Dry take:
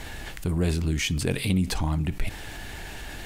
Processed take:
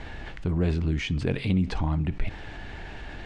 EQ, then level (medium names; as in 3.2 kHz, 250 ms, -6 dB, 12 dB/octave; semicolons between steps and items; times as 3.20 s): distance through air 110 m; treble shelf 5.1 kHz -11.5 dB; 0.0 dB